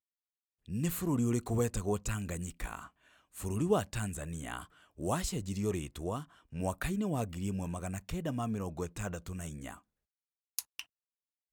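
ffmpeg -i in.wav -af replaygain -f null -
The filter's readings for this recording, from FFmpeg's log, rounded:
track_gain = +16.5 dB
track_peak = 0.119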